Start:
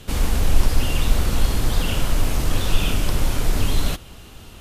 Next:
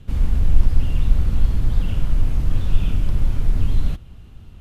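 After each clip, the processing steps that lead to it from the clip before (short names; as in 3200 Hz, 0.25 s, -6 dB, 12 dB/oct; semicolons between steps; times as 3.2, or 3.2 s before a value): tone controls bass +14 dB, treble -8 dB; gain -11.5 dB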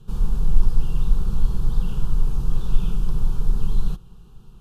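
fixed phaser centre 410 Hz, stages 8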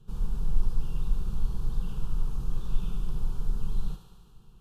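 thinning echo 72 ms, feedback 77%, high-pass 400 Hz, level -7.5 dB; gain -8.5 dB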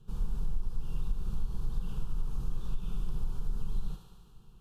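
compressor 5:1, threshold -23 dBFS, peak gain reduction 8.5 dB; gain -1.5 dB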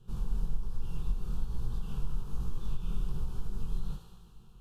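chorus 1.2 Hz, delay 17 ms, depth 6.7 ms; gain +4 dB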